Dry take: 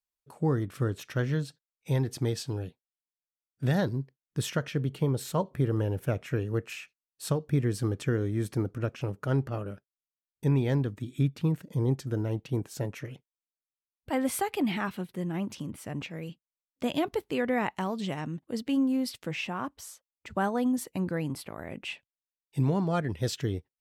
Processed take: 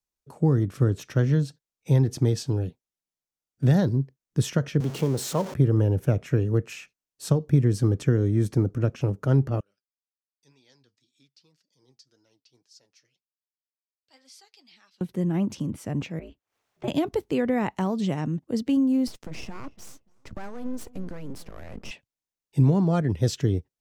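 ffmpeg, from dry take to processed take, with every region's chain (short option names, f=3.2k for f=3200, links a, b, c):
-filter_complex "[0:a]asettb=1/sr,asplit=3[a][b][c];[a]atrim=end=4.804[d];[b]atrim=start=4.8:end=5.54,asetpts=PTS-STARTPTS,afade=t=in:d=0.004:c=qsin,afade=t=out:st=0.736:d=0.004:c=qsin,aeval=exprs='val(0)+0.5*0.0211*sgn(val(0))':c=same,highpass=f=310:p=1[e];[c]atrim=start=5.536[f];[d][e]acrossfade=d=0.004:c1=hsin:c2=qsin[g];[g][f]acrossfade=d=0.004:c1=qsin:c2=hsin,asettb=1/sr,asplit=3[h][i][j];[h]atrim=end=9.604[k];[i]atrim=start=9.6:end=15.01,asetpts=PTS-STARTPTS,afade=t=in:d=0.004:c=qsin,afade=t=out:st=5.406:d=0.004:c=qsin,flanger=delay=3.3:depth=5.4:regen=50:speed=1.9:shape=sinusoidal,bandpass=f=4.8k:t=q:w=4.9[l];[j]atrim=start=15.006[m];[k][l]acrossfade=d=0.004:c1=hsin:c2=qsin[n];[n][m]acrossfade=d=0.004:c1=qsin:c2=hsin,asettb=1/sr,asplit=3[o][p][q];[o]atrim=end=16.194[r];[p]atrim=start=16.19:end=16.88,asetpts=PTS-STARTPTS,afade=t=in:d=0.004:c=qsin,afade=t=out:st=0.686:d=0.004:c=qsin,acrossover=split=430 3100:gain=0.224 1 0.2[s][t][u];[s][t][u]amix=inputs=3:normalize=0,acompressor=mode=upward:threshold=-52dB:ratio=2.5:attack=3.2:release=140:knee=2.83:detection=peak,aeval=exprs='val(0)*sin(2*PI*110*n/s)':c=same[v];[q]atrim=start=16.876[w];[r][v]acrossfade=d=0.004:c1=hsin:c2=qsin[x];[x][w]acrossfade=d=0.004:c1=qsin:c2=hsin,asettb=1/sr,asplit=3[y][z][aa];[y]atrim=end=19.074[ab];[z]atrim=start=19.07:end=21.91,asetpts=PTS-STARTPTS,afade=t=in:d=0.004:c=qsin,afade=t=out:st=2.836:d=0.004:c=qsin,acompressor=threshold=-33dB:ratio=4:attack=3.2:release=140:knee=1:detection=peak,aeval=exprs='max(val(0),0)':c=same,asplit=2[ac][ad];[ad]adelay=290,lowpass=f=1.2k:p=1,volume=-19dB,asplit=2[ae][af];[af]adelay=290,lowpass=f=1.2k:p=1,volume=0.25[ag];[ac][ae][ag]amix=inputs=3:normalize=0,atrim=end_sample=125244[ah];[aa]atrim=start=21.906[ai];[ab][ah]acrossfade=d=0.004:c1=hsin:c2=qsin[aj];[aj][ai]acrossfade=d=0.004:c1=qsin:c2=hsin,tiltshelf=f=710:g=5,acrossover=split=170|3000[ak][al][am];[al]acompressor=threshold=-24dB:ratio=6[an];[ak][an][am]amix=inputs=3:normalize=0,equalizer=f=6.1k:w=1.7:g=6,volume=3.5dB"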